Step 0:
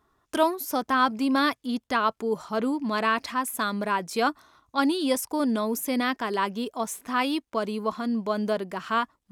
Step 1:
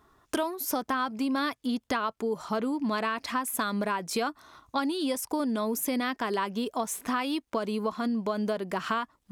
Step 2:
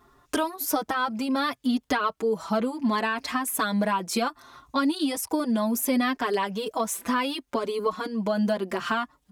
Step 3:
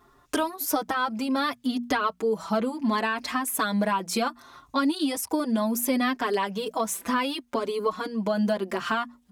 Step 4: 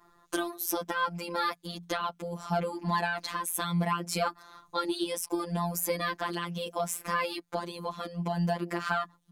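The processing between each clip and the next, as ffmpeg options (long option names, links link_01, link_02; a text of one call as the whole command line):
ffmpeg -i in.wav -af "acompressor=threshold=-32dB:ratio=10,volume=6dB" out.wav
ffmpeg -i in.wav -filter_complex "[0:a]asplit=2[link_01][link_02];[link_02]adelay=5.3,afreqshift=0.68[link_03];[link_01][link_03]amix=inputs=2:normalize=1,volume=6.5dB" out.wav
ffmpeg -i in.wav -af "bandreject=frequency=60:width_type=h:width=6,bandreject=frequency=120:width_type=h:width=6,bandreject=frequency=180:width_type=h:width=6,bandreject=frequency=240:width_type=h:width=6" out.wav
ffmpeg -i in.wav -af "afftfilt=real='hypot(re,im)*cos(PI*b)':imag='0':win_size=1024:overlap=0.75" out.wav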